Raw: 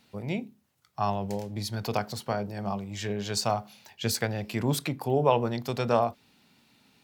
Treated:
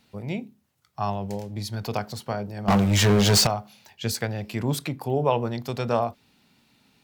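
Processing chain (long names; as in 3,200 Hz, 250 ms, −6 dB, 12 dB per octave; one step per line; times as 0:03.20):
low-shelf EQ 100 Hz +5.5 dB
0:02.68–0:03.47: leveller curve on the samples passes 5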